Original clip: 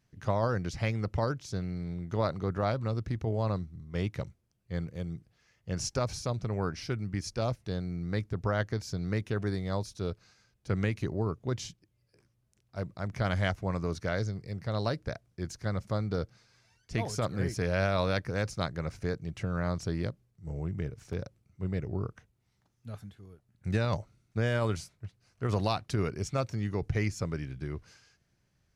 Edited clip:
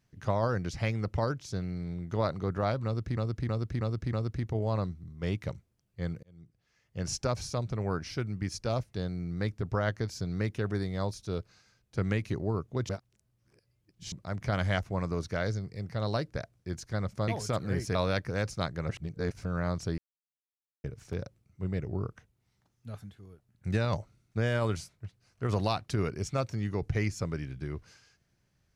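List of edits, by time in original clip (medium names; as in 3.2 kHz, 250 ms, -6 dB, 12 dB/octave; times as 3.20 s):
2.85–3.17 s: loop, 5 plays
4.95–5.81 s: fade in
11.61–12.84 s: reverse
16.00–16.97 s: delete
17.64–17.95 s: delete
18.89–19.45 s: reverse
19.98–20.84 s: mute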